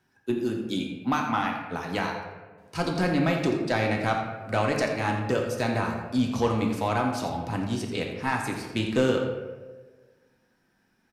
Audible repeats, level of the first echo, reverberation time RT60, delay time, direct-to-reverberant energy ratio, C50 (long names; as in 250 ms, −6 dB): 1, −10.5 dB, 1.4 s, 85 ms, 0.5 dB, 3.5 dB